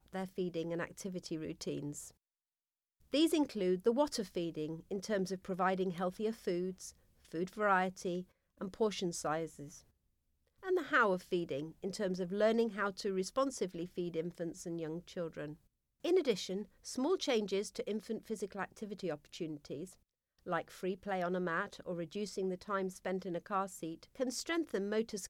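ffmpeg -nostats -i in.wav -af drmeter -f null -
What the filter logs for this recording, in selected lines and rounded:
Channel 1: DR: 14.3
Overall DR: 14.3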